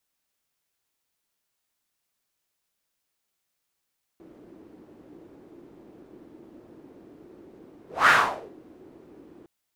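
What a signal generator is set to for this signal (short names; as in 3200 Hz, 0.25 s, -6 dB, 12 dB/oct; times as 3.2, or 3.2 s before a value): whoosh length 5.26 s, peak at 3.89, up 0.23 s, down 0.49 s, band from 330 Hz, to 1500 Hz, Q 3.6, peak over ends 33 dB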